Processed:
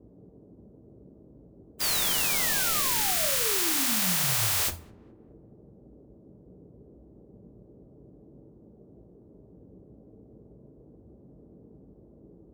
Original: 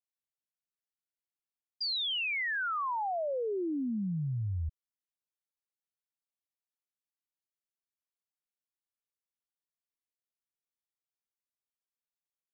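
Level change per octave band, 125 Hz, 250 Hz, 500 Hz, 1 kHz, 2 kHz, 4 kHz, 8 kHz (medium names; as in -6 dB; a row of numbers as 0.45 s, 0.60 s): -2.0 dB, -1.5 dB, -1.0 dB, +0.5 dB, +3.0 dB, +6.5 dB, no reading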